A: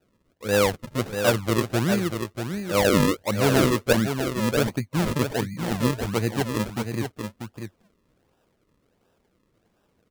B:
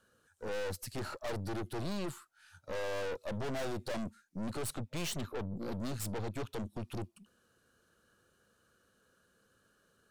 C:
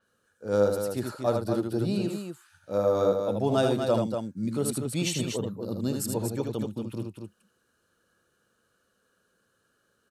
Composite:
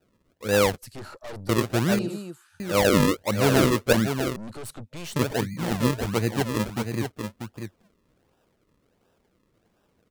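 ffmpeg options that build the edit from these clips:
-filter_complex "[1:a]asplit=2[s0][s1];[0:a]asplit=4[s2][s3][s4][s5];[s2]atrim=end=0.782[s6];[s0]atrim=start=0.778:end=1.492[s7];[s3]atrim=start=1.488:end=1.992[s8];[2:a]atrim=start=1.988:end=2.602[s9];[s4]atrim=start=2.598:end=4.362[s10];[s1]atrim=start=4.358:end=5.162[s11];[s5]atrim=start=5.158[s12];[s6][s7]acrossfade=d=0.004:c1=hsin:c2=hsin[s13];[s13][s8]acrossfade=d=0.004:c1=hsin:c2=hsin[s14];[s14][s9]acrossfade=d=0.004:c1=hsin:c2=hsin[s15];[s15][s10]acrossfade=d=0.004:c1=hsin:c2=hsin[s16];[s16][s11]acrossfade=d=0.004:c1=hsin:c2=hsin[s17];[s17][s12]acrossfade=d=0.004:c1=hsin:c2=hsin"

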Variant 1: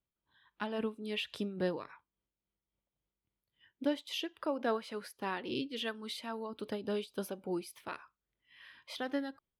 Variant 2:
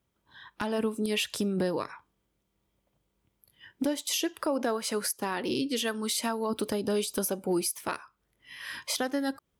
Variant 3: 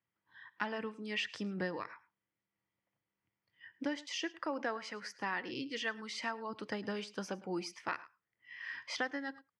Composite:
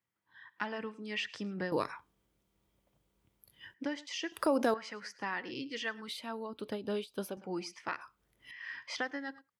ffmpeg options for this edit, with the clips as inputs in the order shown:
-filter_complex "[1:a]asplit=3[s0][s1][s2];[2:a]asplit=5[s3][s4][s5][s6][s7];[s3]atrim=end=1.722[s8];[s0]atrim=start=1.718:end=3.742[s9];[s4]atrim=start=3.738:end=4.322[s10];[s1]atrim=start=4.318:end=4.742[s11];[s5]atrim=start=4.738:end=6.082[s12];[0:a]atrim=start=6.078:end=7.372[s13];[s6]atrim=start=7.368:end=8.012[s14];[s2]atrim=start=8.008:end=8.512[s15];[s7]atrim=start=8.508[s16];[s8][s9]acrossfade=d=0.004:c1=hsin:c2=hsin[s17];[s17][s10]acrossfade=d=0.004:c1=hsin:c2=hsin[s18];[s18][s11]acrossfade=d=0.004:c1=hsin:c2=hsin[s19];[s19][s12]acrossfade=d=0.004:c1=hsin:c2=hsin[s20];[s20][s13]acrossfade=d=0.004:c1=hsin:c2=hsin[s21];[s21][s14]acrossfade=d=0.004:c1=hsin:c2=hsin[s22];[s22][s15]acrossfade=d=0.004:c1=hsin:c2=hsin[s23];[s23][s16]acrossfade=d=0.004:c1=hsin:c2=hsin"

